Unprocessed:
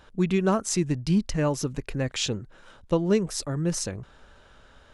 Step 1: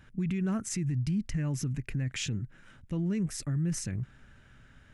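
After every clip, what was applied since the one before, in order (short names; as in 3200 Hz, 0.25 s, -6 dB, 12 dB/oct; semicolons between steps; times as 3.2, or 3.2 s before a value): ten-band EQ 125 Hz +10 dB, 250 Hz +4 dB, 500 Hz -9 dB, 1000 Hz -8 dB, 2000 Hz +7 dB, 4000 Hz -8 dB; limiter -20.5 dBFS, peak gain reduction 11 dB; gain -3.5 dB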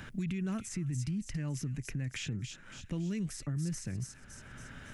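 thin delay 0.279 s, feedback 33%, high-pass 2900 Hz, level -6.5 dB; three-band squash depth 70%; gain -5 dB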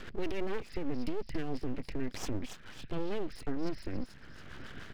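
downsampling 11025 Hz; rotary speaker horn 7 Hz; full-wave rectifier; gain +6 dB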